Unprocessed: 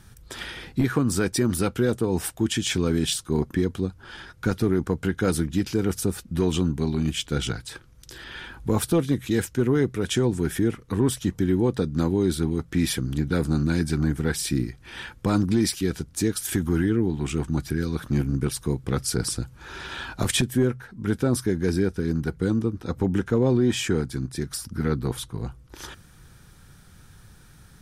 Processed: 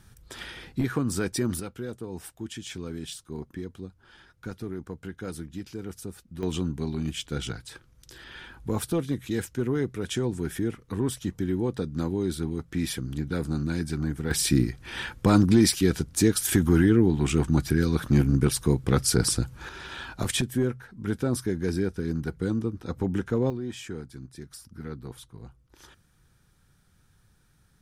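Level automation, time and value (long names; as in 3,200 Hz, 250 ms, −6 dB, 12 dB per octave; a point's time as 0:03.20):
−4.5 dB
from 0:01.60 −13 dB
from 0:06.43 −5.5 dB
from 0:14.31 +3 dB
from 0:19.69 −4 dB
from 0:23.50 −13 dB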